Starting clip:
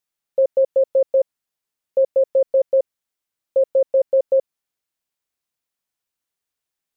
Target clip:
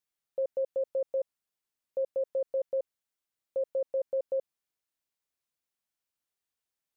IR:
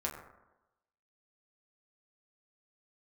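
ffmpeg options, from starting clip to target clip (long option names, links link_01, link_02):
-af "alimiter=limit=-19.5dB:level=0:latency=1:release=30,volume=-5.5dB"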